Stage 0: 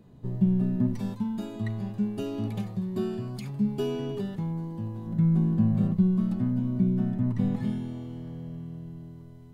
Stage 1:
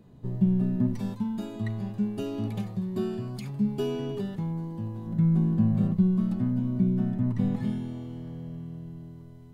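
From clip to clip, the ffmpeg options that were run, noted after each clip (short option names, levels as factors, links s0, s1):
-af anull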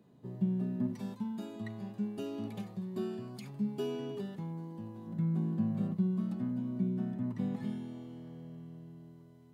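-af "highpass=170,volume=0.501"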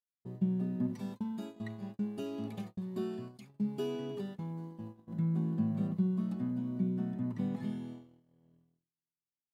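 -af "agate=range=0.00224:threshold=0.00708:ratio=16:detection=peak"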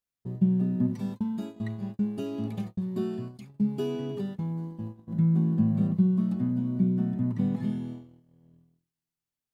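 -af "lowshelf=f=190:g=10,volume=1.41"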